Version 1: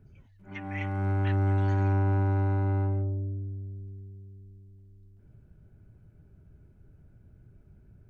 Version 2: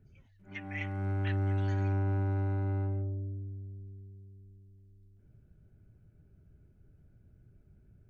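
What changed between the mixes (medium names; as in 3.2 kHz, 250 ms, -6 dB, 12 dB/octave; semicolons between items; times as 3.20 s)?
background -5.0 dB; master: add peaking EQ 970 Hz -5 dB 0.61 oct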